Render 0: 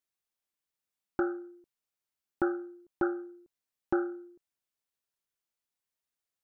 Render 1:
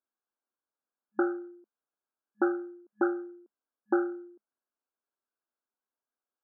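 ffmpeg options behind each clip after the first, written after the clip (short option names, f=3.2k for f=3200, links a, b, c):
-af "afftfilt=real='re*between(b*sr/4096,210,1700)':imag='im*between(b*sr/4096,210,1700)':win_size=4096:overlap=0.75,volume=2.5dB"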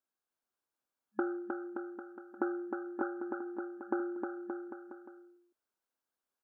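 -filter_complex "[0:a]acompressor=threshold=-30dB:ratio=6,asplit=2[a][b];[b]aecho=0:1:310|573.5|797.5|987.9|1150:0.631|0.398|0.251|0.158|0.1[c];[a][c]amix=inputs=2:normalize=0"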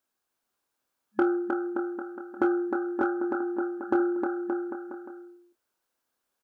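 -filter_complex "[0:a]asplit=2[a][b];[b]volume=28dB,asoftclip=hard,volume=-28dB,volume=-6dB[c];[a][c]amix=inputs=2:normalize=0,asplit=2[d][e];[e]adelay=26,volume=-8.5dB[f];[d][f]amix=inputs=2:normalize=0,volume=5dB"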